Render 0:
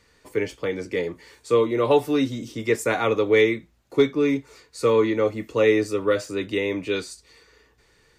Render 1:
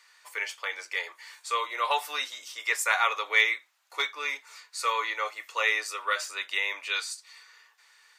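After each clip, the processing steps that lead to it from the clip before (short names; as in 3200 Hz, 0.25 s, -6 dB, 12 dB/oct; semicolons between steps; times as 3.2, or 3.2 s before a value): HPF 910 Hz 24 dB/oct; gain +3 dB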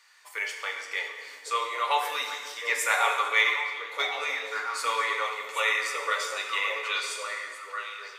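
on a send: delay with a stepping band-pass 0.552 s, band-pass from 200 Hz, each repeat 1.4 oct, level 0 dB; on the sum: plate-style reverb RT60 1.6 s, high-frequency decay 0.85×, DRR 2.5 dB; gain -1 dB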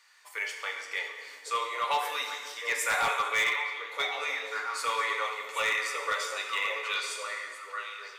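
hard clip -19.5 dBFS, distortion -16 dB; gain -2 dB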